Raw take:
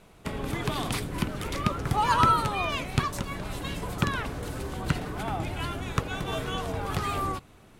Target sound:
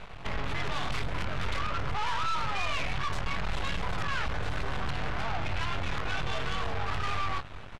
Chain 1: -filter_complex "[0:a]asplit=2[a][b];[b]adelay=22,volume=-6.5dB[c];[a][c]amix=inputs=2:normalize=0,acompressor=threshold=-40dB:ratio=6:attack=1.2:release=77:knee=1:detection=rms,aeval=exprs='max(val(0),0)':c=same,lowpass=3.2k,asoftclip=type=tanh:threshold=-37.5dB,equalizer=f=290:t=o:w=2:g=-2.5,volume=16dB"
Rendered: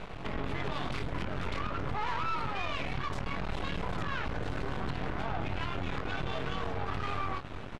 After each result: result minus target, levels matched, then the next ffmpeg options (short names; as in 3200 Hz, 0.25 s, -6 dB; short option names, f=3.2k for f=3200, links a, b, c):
compressor: peak gain reduction +9.5 dB; 250 Hz band +5.5 dB
-filter_complex "[0:a]asplit=2[a][b];[b]adelay=22,volume=-6.5dB[c];[a][c]amix=inputs=2:normalize=0,acompressor=threshold=-28.5dB:ratio=6:attack=1.2:release=77:knee=1:detection=rms,aeval=exprs='max(val(0),0)':c=same,lowpass=3.2k,asoftclip=type=tanh:threshold=-37.5dB,equalizer=f=290:t=o:w=2:g=-2.5,volume=16dB"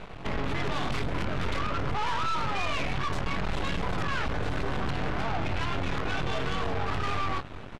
250 Hz band +5.0 dB
-filter_complex "[0:a]asplit=2[a][b];[b]adelay=22,volume=-6.5dB[c];[a][c]amix=inputs=2:normalize=0,acompressor=threshold=-28.5dB:ratio=6:attack=1.2:release=77:knee=1:detection=rms,aeval=exprs='max(val(0),0)':c=same,lowpass=3.2k,asoftclip=type=tanh:threshold=-37.5dB,equalizer=f=290:t=o:w=2:g=-11,volume=16dB"